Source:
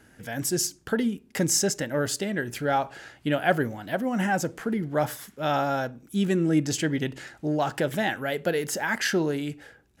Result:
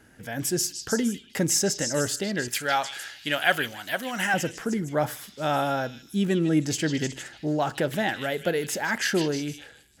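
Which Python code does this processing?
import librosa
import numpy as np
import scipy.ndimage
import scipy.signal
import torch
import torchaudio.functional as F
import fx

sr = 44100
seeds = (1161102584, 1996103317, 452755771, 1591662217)

p1 = fx.tilt_shelf(x, sr, db=-10.0, hz=910.0, at=(2.48, 4.34))
y = p1 + fx.echo_stepped(p1, sr, ms=154, hz=3500.0, octaves=0.7, feedback_pct=70, wet_db=-3.5, dry=0)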